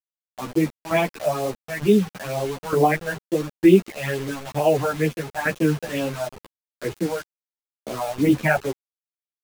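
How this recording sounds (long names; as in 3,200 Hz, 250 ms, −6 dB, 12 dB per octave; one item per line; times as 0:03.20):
phaser sweep stages 12, 2.2 Hz, lowest notch 330–1,800 Hz
tremolo saw down 1.1 Hz, depth 75%
a quantiser's noise floor 6 bits, dither none
a shimmering, thickened sound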